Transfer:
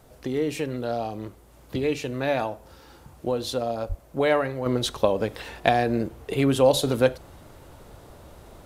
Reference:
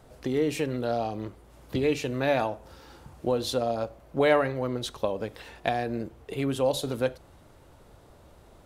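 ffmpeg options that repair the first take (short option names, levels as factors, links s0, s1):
-filter_complex "[0:a]asplit=3[s0][s1][s2];[s0]afade=t=out:st=3.88:d=0.02[s3];[s1]highpass=f=140:w=0.5412,highpass=f=140:w=1.3066,afade=t=in:st=3.88:d=0.02,afade=t=out:st=4:d=0.02[s4];[s2]afade=t=in:st=4:d=0.02[s5];[s3][s4][s5]amix=inputs=3:normalize=0,agate=range=0.0891:threshold=0.00794,asetnsamples=n=441:p=0,asendcmd='4.66 volume volume -7dB',volume=1"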